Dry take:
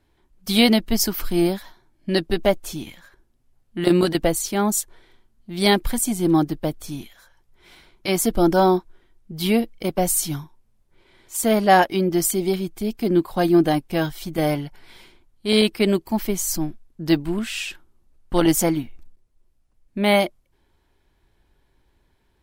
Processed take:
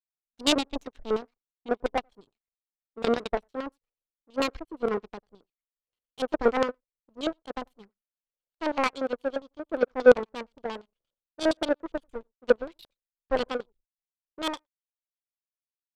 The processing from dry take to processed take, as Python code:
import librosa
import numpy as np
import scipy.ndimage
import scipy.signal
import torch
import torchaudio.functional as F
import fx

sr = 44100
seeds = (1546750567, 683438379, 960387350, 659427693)

y = fx.speed_glide(x, sr, from_pct=124, to_pct=157)
y = y + 10.0 ** (-21.0 / 20.0) * np.pad(y, (int(91 * sr / 1000.0), 0))[:len(y)]
y = fx.filter_lfo_lowpass(y, sr, shape='square', hz=8.6, low_hz=590.0, high_hz=3500.0, q=2.6)
y = fx.high_shelf(y, sr, hz=2900.0, db=-4.0)
y = fx.power_curve(y, sr, exponent=2.0)
y = y * 10.0 ** (-2.5 / 20.0)